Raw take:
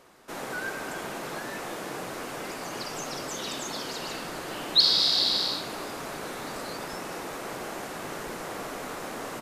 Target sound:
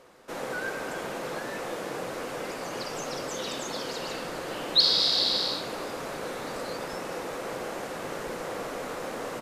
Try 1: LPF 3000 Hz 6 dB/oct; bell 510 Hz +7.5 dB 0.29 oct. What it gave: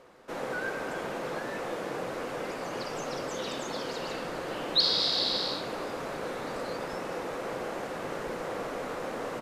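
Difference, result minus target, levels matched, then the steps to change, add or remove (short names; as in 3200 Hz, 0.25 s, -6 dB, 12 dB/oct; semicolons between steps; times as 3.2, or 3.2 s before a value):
8000 Hz band -3.0 dB
change: LPF 8200 Hz 6 dB/oct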